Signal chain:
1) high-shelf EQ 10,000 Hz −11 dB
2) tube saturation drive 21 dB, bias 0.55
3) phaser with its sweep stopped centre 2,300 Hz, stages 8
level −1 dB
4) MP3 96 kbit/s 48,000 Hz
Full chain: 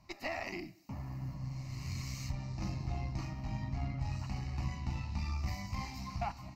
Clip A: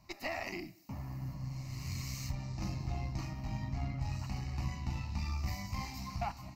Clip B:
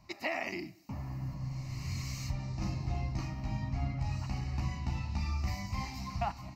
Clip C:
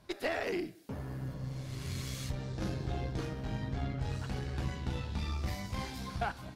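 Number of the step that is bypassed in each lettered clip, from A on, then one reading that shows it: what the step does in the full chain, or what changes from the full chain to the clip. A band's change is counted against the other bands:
1, 8 kHz band +2.5 dB
2, change in integrated loudness +2.5 LU
3, 500 Hz band +5.0 dB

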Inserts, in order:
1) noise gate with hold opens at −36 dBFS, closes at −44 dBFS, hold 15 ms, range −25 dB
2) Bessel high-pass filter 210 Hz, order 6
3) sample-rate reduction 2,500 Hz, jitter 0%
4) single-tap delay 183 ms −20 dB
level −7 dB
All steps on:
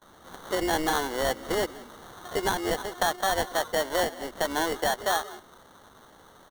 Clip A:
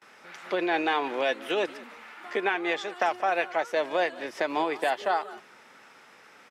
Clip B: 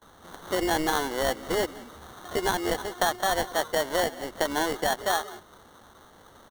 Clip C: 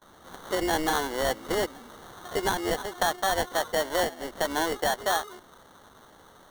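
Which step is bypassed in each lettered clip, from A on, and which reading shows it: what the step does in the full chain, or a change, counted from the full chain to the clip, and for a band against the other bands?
3, 8 kHz band −16.5 dB
2, change in momentary loudness spread −3 LU
4, change in momentary loudness spread −3 LU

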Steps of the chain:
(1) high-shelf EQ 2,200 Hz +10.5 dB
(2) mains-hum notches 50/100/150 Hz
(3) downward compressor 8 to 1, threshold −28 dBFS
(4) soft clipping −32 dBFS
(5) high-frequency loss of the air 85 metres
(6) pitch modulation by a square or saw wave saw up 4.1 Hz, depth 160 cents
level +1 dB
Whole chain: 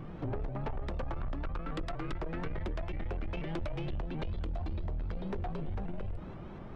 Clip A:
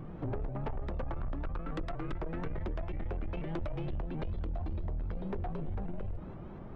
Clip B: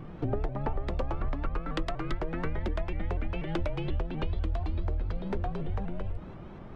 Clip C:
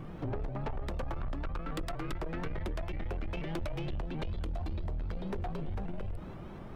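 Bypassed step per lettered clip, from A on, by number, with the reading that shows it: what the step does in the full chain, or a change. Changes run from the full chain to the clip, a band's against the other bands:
1, 4 kHz band −5.5 dB
4, distortion level −11 dB
5, 4 kHz band +2.0 dB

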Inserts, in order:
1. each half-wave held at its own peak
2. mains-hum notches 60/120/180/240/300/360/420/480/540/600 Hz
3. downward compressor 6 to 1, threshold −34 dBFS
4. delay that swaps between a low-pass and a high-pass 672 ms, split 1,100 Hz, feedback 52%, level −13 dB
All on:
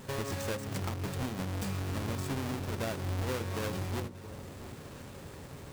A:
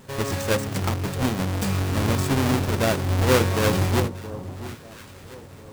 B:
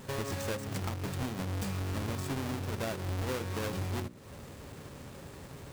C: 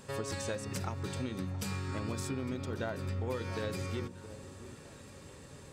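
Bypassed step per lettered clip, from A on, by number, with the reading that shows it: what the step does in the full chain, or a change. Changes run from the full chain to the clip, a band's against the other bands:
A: 3, average gain reduction 8.5 dB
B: 4, echo-to-direct ratio −15.5 dB to none audible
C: 1, distortion level −5 dB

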